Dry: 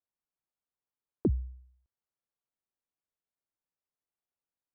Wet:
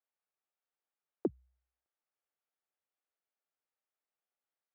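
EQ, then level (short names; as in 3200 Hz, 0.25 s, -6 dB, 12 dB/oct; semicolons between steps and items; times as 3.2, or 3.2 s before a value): HPF 510 Hz 12 dB/oct; air absorption 400 m; notch 1000 Hz, Q 8.3; +5.0 dB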